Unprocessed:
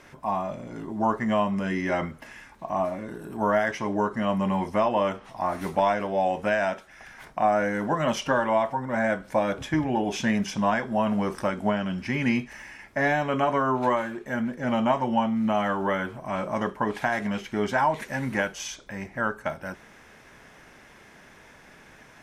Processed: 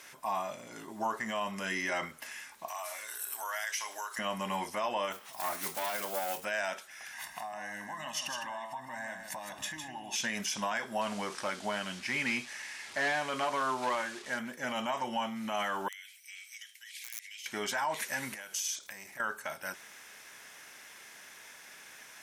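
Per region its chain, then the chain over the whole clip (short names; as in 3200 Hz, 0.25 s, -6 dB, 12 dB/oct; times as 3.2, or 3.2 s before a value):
2.68–4.19 HPF 680 Hz + tilt +3.5 dB/oct + compressor 2.5:1, threshold -34 dBFS
5.12–6.45 block floating point 5-bit + tube stage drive 20 dB, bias 0.45
7.13–10.16 comb 1.1 ms, depth 87% + compressor 4:1, threshold -35 dBFS + echo 0.157 s -7 dB
11.01–14.39 delta modulation 64 kbps, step -39.5 dBFS + air absorption 80 m
15.88–17.46 elliptic high-pass 2100 Hz, stop band 50 dB + wrapped overs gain 28.5 dB + compressor 5:1, threshold -46 dBFS
18.34–19.2 high shelf 5400 Hz +10 dB + compressor 16:1, threshold -36 dBFS + core saturation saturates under 770 Hz
whole clip: tilt +4.5 dB/oct; limiter -19.5 dBFS; gain -4 dB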